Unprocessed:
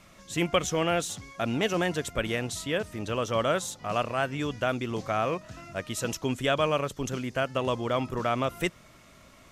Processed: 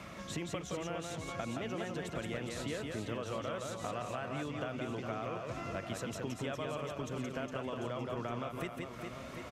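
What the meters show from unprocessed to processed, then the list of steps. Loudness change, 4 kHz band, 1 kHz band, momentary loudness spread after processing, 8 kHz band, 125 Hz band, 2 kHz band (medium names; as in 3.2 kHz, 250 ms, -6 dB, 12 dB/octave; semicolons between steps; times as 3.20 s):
-10.5 dB, -12.0 dB, -11.0 dB, 2 LU, -11.5 dB, -7.5 dB, -11.0 dB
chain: high-pass 52 Hz; treble shelf 4.5 kHz -10 dB; in parallel at -1 dB: peak limiter -23.5 dBFS, peak gain reduction 11.5 dB; on the sum: compression 6:1, threshold -36 dBFS, peak gain reduction 17 dB; on a send: reverse bouncing-ball echo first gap 170 ms, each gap 1.4×, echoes 5; on the sum: three bands compressed up and down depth 40%; trim -2.5 dB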